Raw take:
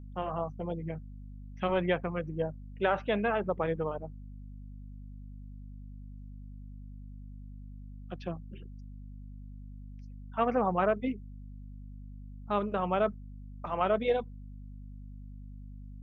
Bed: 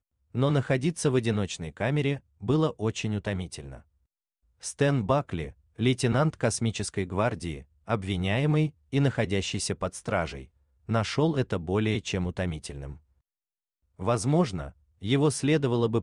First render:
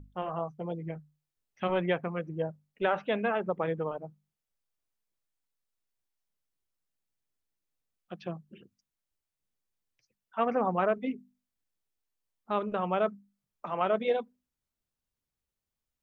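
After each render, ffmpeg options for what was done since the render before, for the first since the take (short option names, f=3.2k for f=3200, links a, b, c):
-af "bandreject=f=50:t=h:w=6,bandreject=f=100:t=h:w=6,bandreject=f=150:t=h:w=6,bandreject=f=200:t=h:w=6,bandreject=f=250:t=h:w=6"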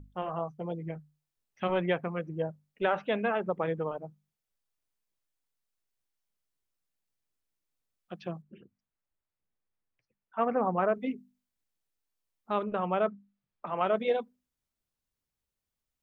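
-filter_complex "[0:a]asettb=1/sr,asplit=3[a][b][c];[a]atrim=end=8.424[d];[b]atrim=start=8.42:end=10.95,asetpts=PTS-STARTPTS,afade=t=in:d=0.004:c=qsin,afade=t=out:st=2.526:d=0.004:c=qsin,lowpass=2.1k[e];[c]atrim=start=10.946[f];[d][e]acrossfade=d=0.004:c1=hsin:c2=qsin[g];[g][f]acrossfade=d=0.004:c1=qsin:c2=hsin,asettb=1/sr,asplit=3[h][i][j];[h]atrim=end=12.644[k];[i]atrim=start=12.64:end=13.77,asetpts=PTS-STARTPTS,afade=t=in:d=0.004:c=qsin,afade=t=out:st=1.126:d=0.004:c=qsin,lowpass=3.4k[l];[j]atrim=start=13.766[m];[k][l]acrossfade=d=0.004:c1=hsin:c2=qsin[n];[n][m]acrossfade=d=0.004:c1=qsin:c2=hsin"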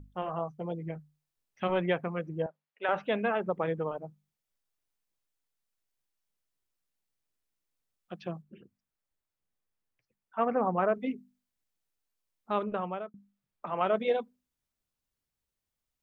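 -filter_complex "[0:a]asettb=1/sr,asplit=3[a][b][c];[a]atrim=end=2.464[d];[b]atrim=start=2.46:end=2.89,asetpts=PTS-STARTPTS,afade=t=in:d=0.004:c=qsin,afade=t=out:st=0.426:d=0.004:c=qsin,highpass=660,lowpass=3.1k[e];[c]atrim=start=2.886[f];[d][e]acrossfade=d=0.004:c1=hsin:c2=qsin[g];[g][f]acrossfade=d=0.004:c1=qsin:c2=hsin,asplit=2[h][i];[h]atrim=end=13.14,asetpts=PTS-STARTPTS,afade=t=out:st=12.7:d=0.44[j];[i]atrim=start=13.14,asetpts=PTS-STARTPTS,afade=t=in:d=0.004:c=hsin[k];[j][k]concat=n=2:v=0:a=1"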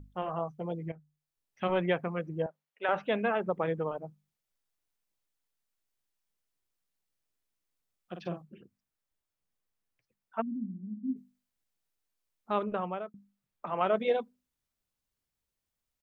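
-filter_complex "[0:a]asplit=3[a][b][c];[a]afade=t=out:st=8.13:d=0.02[d];[b]asplit=2[e][f];[f]adelay=46,volume=-6dB[g];[e][g]amix=inputs=2:normalize=0,afade=t=in:st=8.13:d=0.02,afade=t=out:st=8.54:d=0.02[h];[c]afade=t=in:st=8.54:d=0.02[i];[d][h][i]amix=inputs=3:normalize=0,asplit=3[j][k][l];[j]afade=t=out:st=10.4:d=0.02[m];[k]asuperpass=centerf=230:order=8:qfactor=2.4,afade=t=in:st=10.4:d=0.02,afade=t=out:st=11.15:d=0.02[n];[l]afade=t=in:st=11.15:d=0.02[o];[m][n][o]amix=inputs=3:normalize=0,asplit=2[p][q];[p]atrim=end=0.92,asetpts=PTS-STARTPTS,afade=t=out:st=0.916:d=0.004:c=hsin:silence=0.251189[r];[q]atrim=start=0.92,asetpts=PTS-STARTPTS,afade=t=in:d=0.77:silence=0.251189[s];[r][s]concat=n=2:v=0:a=1"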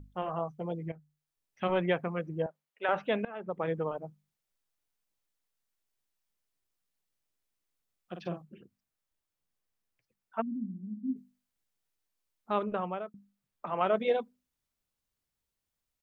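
-filter_complex "[0:a]asplit=2[a][b];[a]atrim=end=3.25,asetpts=PTS-STARTPTS,afade=t=out:st=3.246:d=0.004:c=hsin:silence=0.0707946[c];[b]atrim=start=3.25,asetpts=PTS-STARTPTS,afade=t=in:d=0.49:silence=0.0707946[d];[c][d]concat=n=2:v=0:a=1"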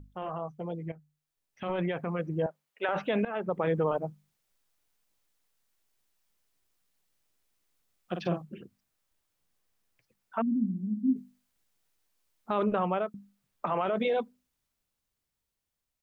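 -af "alimiter=level_in=2.5dB:limit=-24dB:level=0:latency=1:release=20,volume=-2.5dB,dynaudnorm=f=490:g=9:m=8dB"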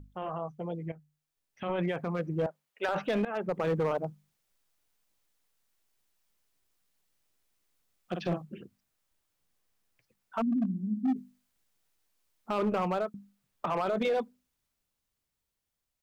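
-af "asoftclip=type=hard:threshold=-23.5dB"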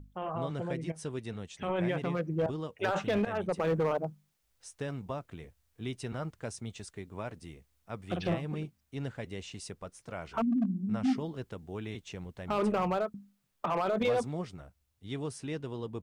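-filter_complex "[1:a]volume=-13.5dB[a];[0:a][a]amix=inputs=2:normalize=0"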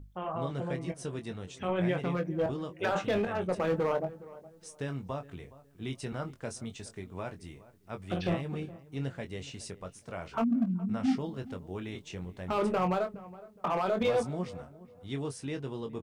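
-filter_complex "[0:a]asplit=2[a][b];[b]adelay=22,volume=-7.5dB[c];[a][c]amix=inputs=2:normalize=0,asplit=2[d][e];[e]adelay=417,lowpass=f=1.4k:p=1,volume=-18dB,asplit=2[f][g];[g]adelay=417,lowpass=f=1.4k:p=1,volume=0.31,asplit=2[h][i];[i]adelay=417,lowpass=f=1.4k:p=1,volume=0.31[j];[d][f][h][j]amix=inputs=4:normalize=0"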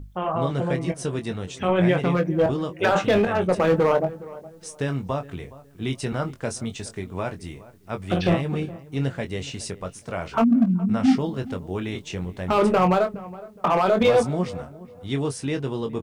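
-af "volume=10dB"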